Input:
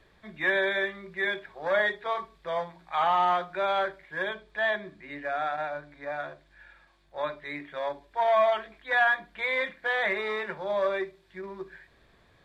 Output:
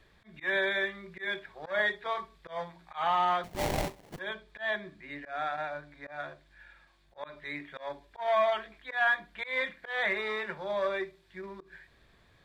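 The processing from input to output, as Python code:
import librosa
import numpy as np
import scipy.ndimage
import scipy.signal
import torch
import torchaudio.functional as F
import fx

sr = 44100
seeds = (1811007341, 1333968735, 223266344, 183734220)

y = fx.peak_eq(x, sr, hz=560.0, db=-4.0, octaves=2.8)
y = fx.sample_hold(y, sr, seeds[0], rate_hz=1400.0, jitter_pct=20, at=(3.43, 4.18), fade=0.02)
y = fx.auto_swell(y, sr, attack_ms=141.0)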